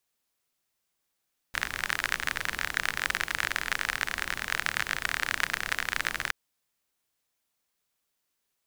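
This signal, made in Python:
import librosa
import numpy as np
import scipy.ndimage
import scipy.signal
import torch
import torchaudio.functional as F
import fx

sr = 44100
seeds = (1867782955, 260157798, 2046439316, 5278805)

y = fx.rain(sr, seeds[0], length_s=4.77, drops_per_s=39.0, hz=1700.0, bed_db=-12)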